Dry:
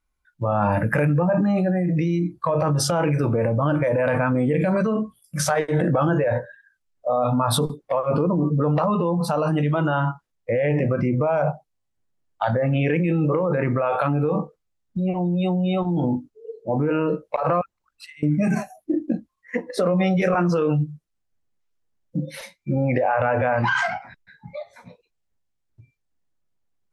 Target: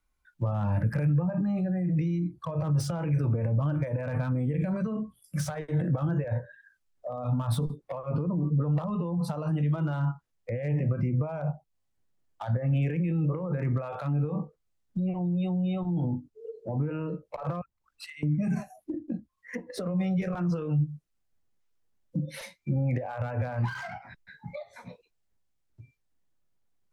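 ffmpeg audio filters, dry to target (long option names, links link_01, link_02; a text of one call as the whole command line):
ffmpeg -i in.wav -filter_complex "[0:a]acrossover=split=160[link_01][link_02];[link_02]acompressor=threshold=-37dB:ratio=4[link_03];[link_01][link_03]amix=inputs=2:normalize=0,acrossover=split=750[link_04][link_05];[link_05]volume=35.5dB,asoftclip=hard,volume=-35.5dB[link_06];[link_04][link_06]amix=inputs=2:normalize=0" out.wav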